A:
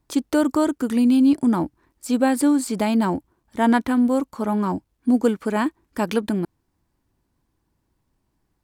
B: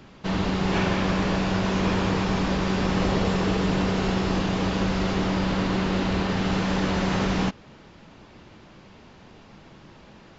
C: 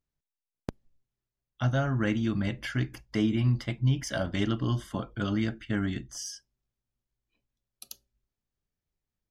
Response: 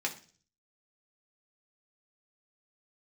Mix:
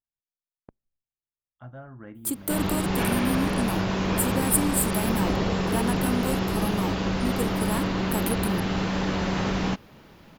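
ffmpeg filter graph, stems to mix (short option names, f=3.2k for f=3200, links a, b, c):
-filter_complex "[0:a]acompressor=threshold=-18dB:ratio=6,aexciter=amount=7:drive=9.1:freq=8.3k,adelay=2150,volume=-7.5dB[a];[1:a]adelay=2250,volume=-2dB[b];[2:a]lowpass=1.1k,lowshelf=f=500:g=-8.5,volume=-9dB[c];[a][b][c]amix=inputs=3:normalize=0"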